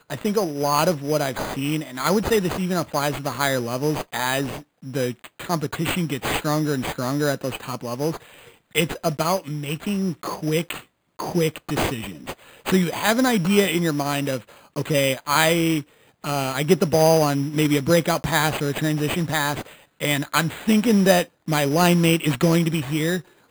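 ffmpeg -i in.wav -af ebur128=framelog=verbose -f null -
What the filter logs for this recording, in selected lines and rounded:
Integrated loudness:
  I:         -22.1 LUFS
  Threshold: -32.4 LUFS
Loudness range:
  LRA:         5.6 LU
  Threshold: -42.6 LUFS
  LRA low:   -25.6 LUFS
  LRA high:  -20.0 LUFS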